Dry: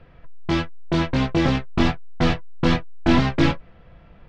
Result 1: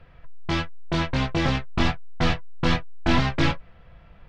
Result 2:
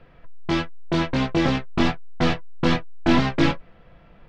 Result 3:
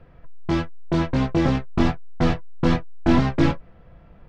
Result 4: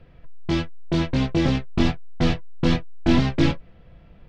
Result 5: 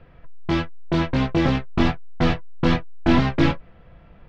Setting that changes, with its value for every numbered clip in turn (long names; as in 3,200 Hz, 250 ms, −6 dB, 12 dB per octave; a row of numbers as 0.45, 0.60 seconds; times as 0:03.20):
parametric band, centre frequency: 300, 67, 3,200, 1,200, 11,000 Hertz